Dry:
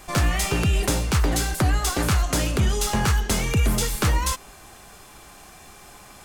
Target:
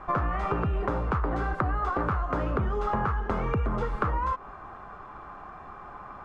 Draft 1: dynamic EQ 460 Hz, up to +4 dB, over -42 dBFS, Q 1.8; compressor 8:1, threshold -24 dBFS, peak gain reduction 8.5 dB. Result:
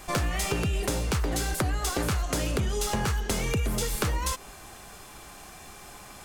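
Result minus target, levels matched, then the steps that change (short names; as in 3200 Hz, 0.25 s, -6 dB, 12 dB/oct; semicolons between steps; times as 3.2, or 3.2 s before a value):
1000 Hz band -6.5 dB
add after dynamic EQ: synth low-pass 1200 Hz, resonance Q 3.3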